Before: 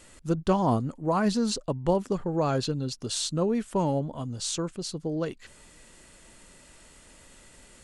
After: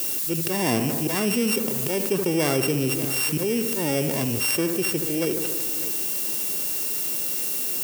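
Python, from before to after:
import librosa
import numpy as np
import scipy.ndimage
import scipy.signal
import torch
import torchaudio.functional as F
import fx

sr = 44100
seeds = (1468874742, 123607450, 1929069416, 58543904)

p1 = np.r_[np.sort(x[:len(x) // 16 * 16].reshape(-1, 16), axis=1).ravel(), x[len(x) // 16 * 16:]]
p2 = fx.auto_swell(p1, sr, attack_ms=267.0)
p3 = scipy.signal.sosfilt(scipy.signal.butter(4, 110.0, 'highpass', fs=sr, output='sos'), p2)
p4 = fx.peak_eq(p3, sr, hz=380.0, db=9.5, octaves=0.84)
p5 = p4 + 10.0 ** (-23.5 / 20.0) * np.pad(p4, (int(600 * sr / 1000.0), 0))[:len(p4)]
p6 = fx.dmg_noise_colour(p5, sr, seeds[0], colour='blue', level_db=-47.0)
p7 = fx.high_shelf(p6, sr, hz=4300.0, db=9.5)
p8 = p7 + fx.echo_bbd(p7, sr, ms=74, stages=1024, feedback_pct=64, wet_db=-12.5, dry=0)
p9 = fx.env_flatten(p8, sr, amount_pct=70)
y = p9 * 10.0 ** (-3.5 / 20.0)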